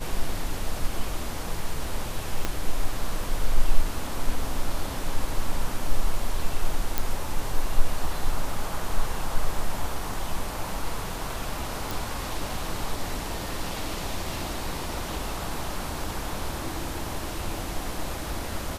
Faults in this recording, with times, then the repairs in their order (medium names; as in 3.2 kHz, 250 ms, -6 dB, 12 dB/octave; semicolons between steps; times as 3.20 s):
2.45 s: pop -11 dBFS
6.98 s: pop
11.91 s: pop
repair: de-click